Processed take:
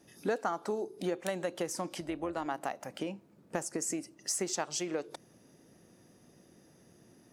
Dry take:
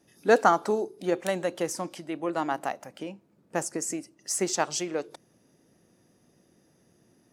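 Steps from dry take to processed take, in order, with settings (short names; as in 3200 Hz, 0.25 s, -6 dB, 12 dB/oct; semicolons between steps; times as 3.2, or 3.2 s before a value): compressor 4:1, threshold -35 dBFS, peak gain reduction 18 dB; 2–2.46 AM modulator 260 Hz, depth 20%; gain +3 dB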